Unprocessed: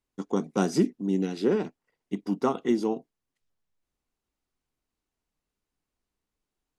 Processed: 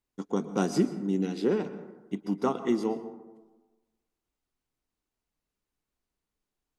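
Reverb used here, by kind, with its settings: plate-style reverb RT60 1.2 s, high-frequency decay 0.35×, pre-delay 0.105 s, DRR 12 dB; gain -2 dB

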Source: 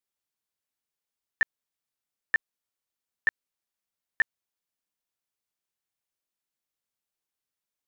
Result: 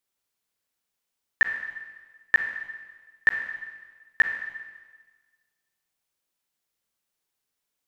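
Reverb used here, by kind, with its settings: Schroeder reverb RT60 1.4 s, combs from 33 ms, DRR 5 dB; gain +5.5 dB

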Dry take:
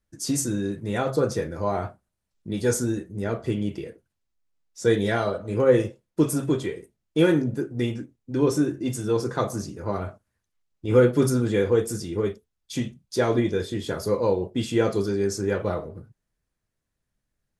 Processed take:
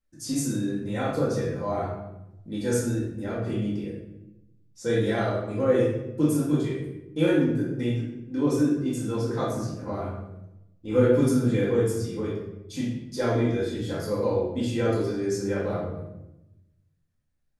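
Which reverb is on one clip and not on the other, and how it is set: shoebox room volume 330 m³, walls mixed, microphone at 2.1 m; gain -9 dB

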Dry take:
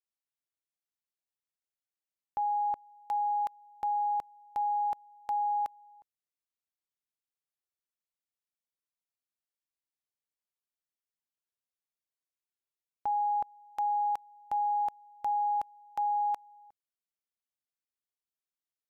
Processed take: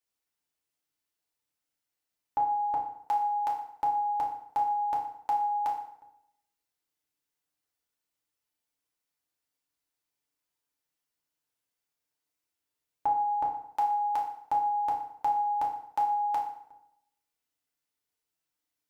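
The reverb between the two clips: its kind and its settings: FDN reverb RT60 0.73 s, low-frequency decay 1×, high-frequency decay 0.8×, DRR -2.5 dB; gain +3.5 dB

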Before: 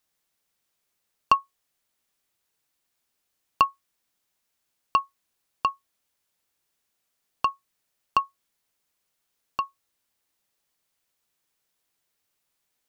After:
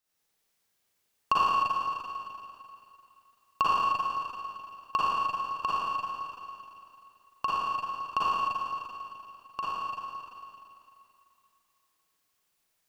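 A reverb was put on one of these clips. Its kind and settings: Schroeder reverb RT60 2.7 s, DRR -9 dB; gain -7.5 dB

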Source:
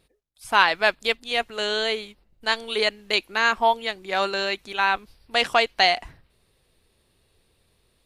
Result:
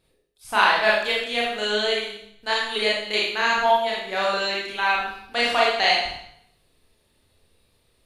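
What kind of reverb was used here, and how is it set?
Schroeder reverb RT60 0.69 s, combs from 26 ms, DRR -5 dB; gain -5 dB

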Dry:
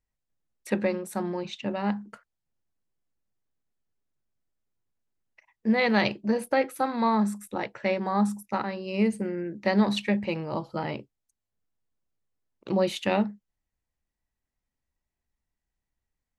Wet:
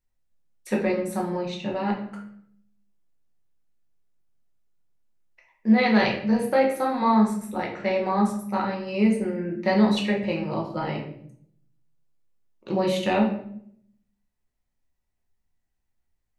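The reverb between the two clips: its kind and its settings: shoebox room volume 120 m³, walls mixed, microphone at 0.98 m; gain -1.5 dB

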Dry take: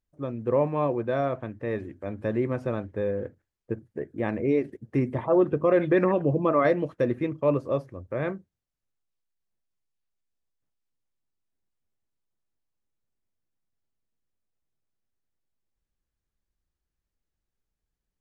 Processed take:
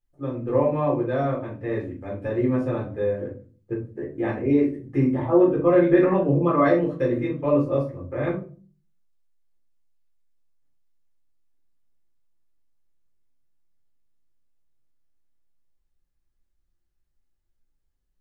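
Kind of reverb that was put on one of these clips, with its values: shoebox room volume 210 m³, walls furnished, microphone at 4 m; gain -6.5 dB

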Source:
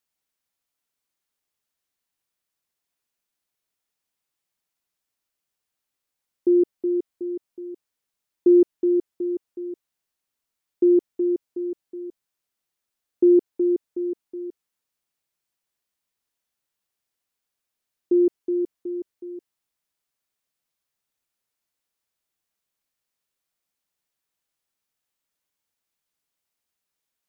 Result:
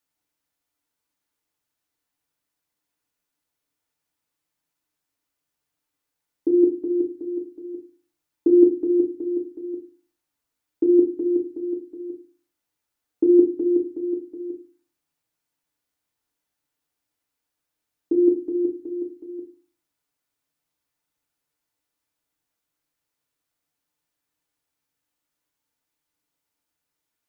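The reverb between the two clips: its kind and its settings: FDN reverb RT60 0.33 s, low-frequency decay 1.5×, high-frequency decay 0.25×, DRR 1 dB

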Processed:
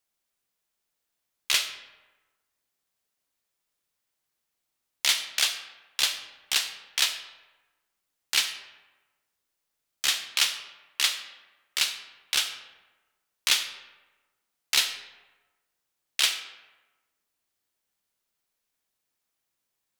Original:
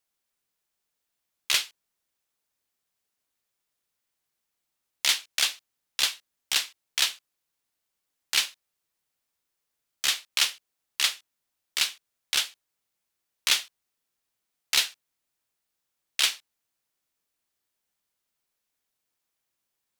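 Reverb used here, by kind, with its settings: digital reverb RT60 1.2 s, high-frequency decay 0.6×, pre-delay 10 ms, DRR 8.5 dB

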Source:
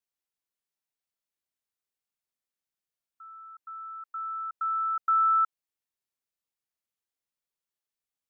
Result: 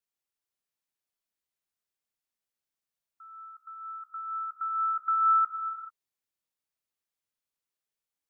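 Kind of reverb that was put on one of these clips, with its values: non-linear reverb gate 0.46 s flat, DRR 4 dB; gain -1.5 dB

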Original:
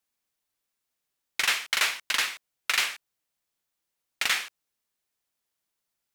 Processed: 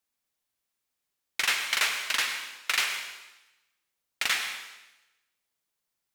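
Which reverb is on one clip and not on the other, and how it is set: plate-style reverb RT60 1 s, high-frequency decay 1×, pre-delay 85 ms, DRR 6.5 dB; gain -1.5 dB

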